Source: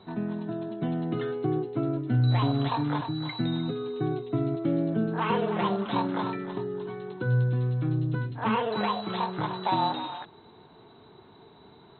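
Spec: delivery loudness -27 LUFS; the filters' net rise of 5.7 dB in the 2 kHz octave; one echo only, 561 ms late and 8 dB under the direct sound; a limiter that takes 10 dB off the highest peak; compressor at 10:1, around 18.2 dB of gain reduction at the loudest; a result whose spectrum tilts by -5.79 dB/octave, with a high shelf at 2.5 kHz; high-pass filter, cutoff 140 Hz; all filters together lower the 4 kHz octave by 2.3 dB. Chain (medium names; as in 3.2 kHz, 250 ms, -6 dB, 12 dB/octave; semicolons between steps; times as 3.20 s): high-pass 140 Hz; peaking EQ 2 kHz +8 dB; treble shelf 2.5 kHz +3.5 dB; peaking EQ 4 kHz -8 dB; compression 10:1, threshold -40 dBFS; peak limiter -38 dBFS; delay 561 ms -8 dB; trim +19 dB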